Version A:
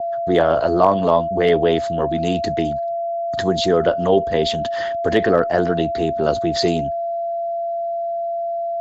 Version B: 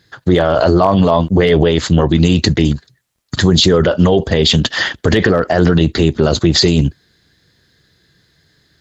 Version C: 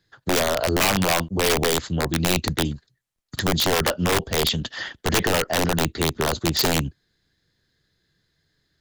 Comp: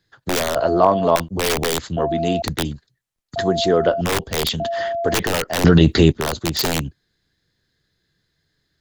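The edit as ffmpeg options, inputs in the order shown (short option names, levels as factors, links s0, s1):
-filter_complex "[0:a]asplit=4[s0][s1][s2][s3];[2:a]asplit=6[s4][s5][s6][s7][s8][s9];[s4]atrim=end=0.562[s10];[s0]atrim=start=0.558:end=1.162[s11];[s5]atrim=start=1.158:end=1.972[s12];[s1]atrim=start=1.968:end=2.422[s13];[s6]atrim=start=2.418:end=3.362[s14];[s2]atrim=start=3.358:end=4.012[s15];[s7]atrim=start=4.008:end=4.602[s16];[s3]atrim=start=4.598:end=5.142[s17];[s8]atrim=start=5.138:end=5.642[s18];[1:a]atrim=start=5.638:end=6.122[s19];[s9]atrim=start=6.118[s20];[s10][s11]acrossfade=d=0.004:c1=hsin:c2=hsin[s21];[s21][s12]acrossfade=d=0.004:c1=hsin:c2=hsin[s22];[s22][s13]acrossfade=d=0.004:c1=hsin:c2=hsin[s23];[s23][s14]acrossfade=d=0.004:c1=hsin:c2=hsin[s24];[s24][s15]acrossfade=d=0.004:c1=hsin:c2=hsin[s25];[s25][s16]acrossfade=d=0.004:c1=hsin:c2=hsin[s26];[s26][s17]acrossfade=d=0.004:c1=hsin:c2=hsin[s27];[s27][s18]acrossfade=d=0.004:c1=hsin:c2=hsin[s28];[s28][s19]acrossfade=d=0.004:c1=hsin:c2=hsin[s29];[s29][s20]acrossfade=d=0.004:c1=hsin:c2=hsin"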